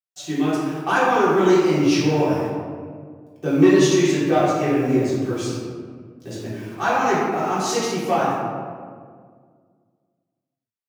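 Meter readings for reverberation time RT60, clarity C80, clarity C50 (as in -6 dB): 1.9 s, 1.0 dB, -1.5 dB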